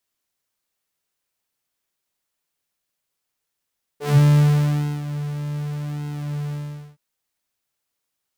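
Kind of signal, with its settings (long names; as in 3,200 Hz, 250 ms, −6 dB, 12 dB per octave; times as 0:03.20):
subtractive patch with pulse-width modulation D3, detune 30 cents, oscillator 2 level −15.5 dB, noise −22.5 dB, filter highpass, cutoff 110 Hz, Q 3.8, filter envelope 2 octaves, filter decay 0.17 s, filter sustain 10%, attack 90 ms, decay 0.93 s, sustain −15 dB, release 0.45 s, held 2.52 s, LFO 0.85 Hz, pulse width 43%, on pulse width 18%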